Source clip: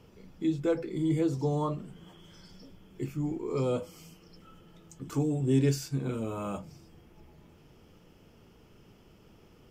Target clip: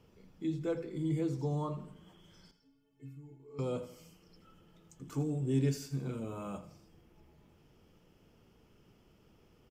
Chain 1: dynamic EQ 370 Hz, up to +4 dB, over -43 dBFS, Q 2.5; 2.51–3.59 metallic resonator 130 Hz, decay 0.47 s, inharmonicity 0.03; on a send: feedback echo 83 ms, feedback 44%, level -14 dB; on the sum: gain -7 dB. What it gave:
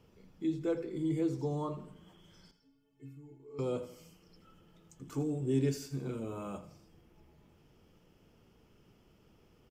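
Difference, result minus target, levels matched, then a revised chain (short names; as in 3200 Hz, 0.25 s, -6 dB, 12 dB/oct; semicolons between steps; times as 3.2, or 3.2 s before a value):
125 Hz band -3.0 dB
dynamic EQ 160 Hz, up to +4 dB, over -43 dBFS, Q 2.5; 2.51–3.59 metallic resonator 130 Hz, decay 0.47 s, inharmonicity 0.03; on a send: feedback echo 83 ms, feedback 44%, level -14 dB; on the sum: gain -7 dB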